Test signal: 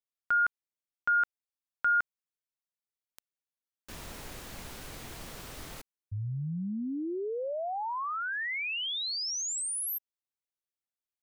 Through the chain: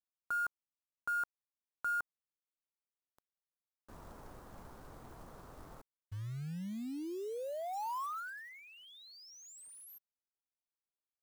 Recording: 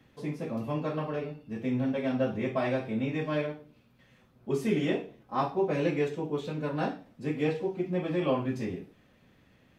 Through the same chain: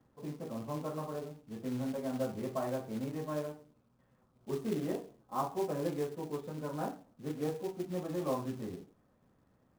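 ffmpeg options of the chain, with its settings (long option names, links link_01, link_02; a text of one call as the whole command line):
ffmpeg -i in.wav -af "highshelf=frequency=1700:width_type=q:width=1.5:gain=-13,acrusher=bits=4:mode=log:mix=0:aa=0.000001,volume=-7.5dB" out.wav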